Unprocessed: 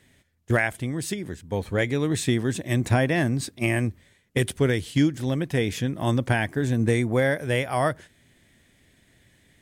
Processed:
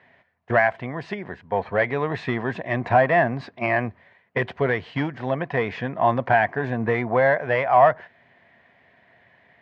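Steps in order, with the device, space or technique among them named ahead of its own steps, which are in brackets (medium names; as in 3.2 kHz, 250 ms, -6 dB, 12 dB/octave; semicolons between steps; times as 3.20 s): overdrive pedal into a guitar cabinet (overdrive pedal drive 13 dB, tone 1.5 kHz, clips at -10 dBFS; cabinet simulation 94–3900 Hz, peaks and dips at 310 Hz -9 dB, 700 Hz +10 dB, 1 kHz +8 dB, 1.8 kHz +4 dB, 3.5 kHz -7 dB)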